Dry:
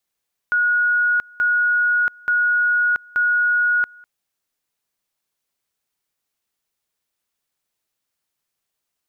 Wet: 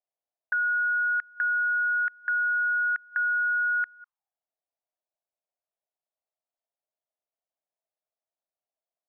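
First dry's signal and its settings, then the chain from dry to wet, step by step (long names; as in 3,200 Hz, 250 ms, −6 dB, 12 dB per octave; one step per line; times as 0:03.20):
tone at two levels in turn 1,450 Hz −14.5 dBFS, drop 27 dB, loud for 0.68 s, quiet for 0.20 s, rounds 4
envelope filter 650–1,800 Hz, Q 5, up, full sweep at −23.5 dBFS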